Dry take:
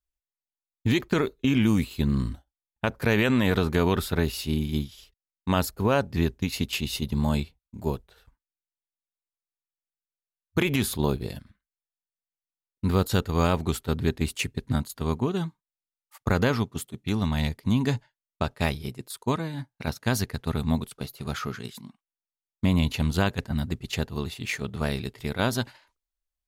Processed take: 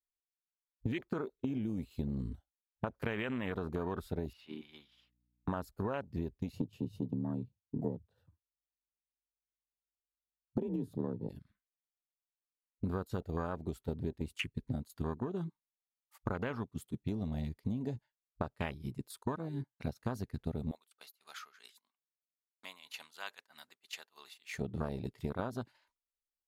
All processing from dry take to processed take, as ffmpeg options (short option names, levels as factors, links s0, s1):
-filter_complex "[0:a]asettb=1/sr,asplit=3[s0][s1][s2];[s0]atrim=end=4.334[s3];[s1]atrim=start=4.33:end=5.48,asetpts=PTS-STARTPTS,afade=t=in:d=0.004:c=qsin,afade=t=out:st=1.146:d=0.004:c=qsin,highpass=f=390:p=1,acrossover=split=550 3300:gain=0.2 1 0.0794[s4][s5][s6];[s4][s5][s6]amix=inputs=3:normalize=0,aeval=exprs='val(0)+0.000794*(sin(2*PI*60*n/s)+sin(2*PI*2*60*n/s)/2+sin(2*PI*3*60*n/s)/3+sin(2*PI*4*60*n/s)/4+sin(2*PI*5*60*n/s)/5)':c=same[s7];[s2]atrim=start=5.476[s8];[s3][s7]acrossfade=d=0.004:c1=hsin:c2=qsin[s9];[s9][s8]acrossfade=d=0.004:c1=qsin:c2=hsin,asettb=1/sr,asplit=3[s10][s11][s12];[s10]atrim=end=6.524[s13];[s11]atrim=start=6.52:end=11.29,asetpts=PTS-STARTPTS,afade=t=in:d=0.004:c=qsin,afade=t=out:st=4.766:d=0.004:c=qsin,tiltshelf=f=700:g=9,bandreject=f=2100:w=6.6,afreqshift=45[s14];[s12]atrim=start=11.286[s15];[s13][s14]acrossfade=d=0.004:c1=hsin:c2=qsin[s16];[s16][s15]acrossfade=d=0.004:c1=qsin:c2=hsin,asettb=1/sr,asplit=3[s17][s18][s19];[s17]atrim=end=20.714[s20];[s18]atrim=start=20.71:end=24.54,asetpts=PTS-STARTPTS,afade=t=in:d=0.004:c=qsin,afade=t=out:st=3.826:d=0.004:c=qsin,agate=range=0.398:threshold=0.00631:ratio=16:release=100:detection=peak,highpass=940,tremolo=f=3.1:d=0.75[s21];[s19]atrim=start=24.536[s22];[s20][s21]acrossfade=d=0.004:c1=hsin:c2=qsin[s23];[s23][s22]acrossfade=d=0.004:c1=qsin:c2=hsin,afwtdn=0.0355,lowshelf=f=240:g=-6.5,acompressor=threshold=0.0126:ratio=12,volume=1.78"